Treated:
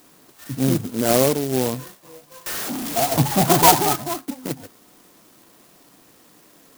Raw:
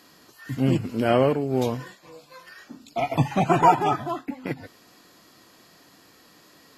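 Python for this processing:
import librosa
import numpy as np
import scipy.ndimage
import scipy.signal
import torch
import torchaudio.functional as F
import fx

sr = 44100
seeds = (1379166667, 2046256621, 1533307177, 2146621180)

y = fx.zero_step(x, sr, step_db=-25.0, at=(2.46, 3.83))
y = scipy.signal.sosfilt(scipy.signal.butter(2, 110.0, 'highpass', fs=sr, output='sos'), y)
y = fx.clock_jitter(y, sr, seeds[0], jitter_ms=0.13)
y = y * librosa.db_to_amplitude(2.5)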